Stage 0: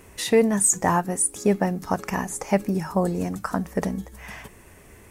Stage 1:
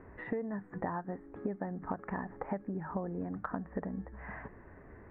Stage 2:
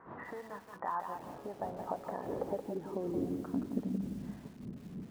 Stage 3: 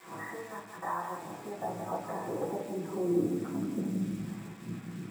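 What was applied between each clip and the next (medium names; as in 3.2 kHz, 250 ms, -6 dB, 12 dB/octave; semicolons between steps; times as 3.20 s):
elliptic low-pass 1.8 kHz, stop band 70 dB; peaking EQ 280 Hz +4.5 dB 0.24 oct; compression 12:1, threshold -30 dBFS, peak gain reduction 17.5 dB; trim -3 dB
wind noise 200 Hz -40 dBFS; band-pass sweep 1.1 kHz -> 210 Hz, 0.88–4.15 s; bit-crushed delay 173 ms, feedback 35%, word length 10-bit, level -6.5 dB; trim +5.5 dB
bit crusher 9-bit; reverberation RT60 0.40 s, pre-delay 3 ms, DRR -6 dB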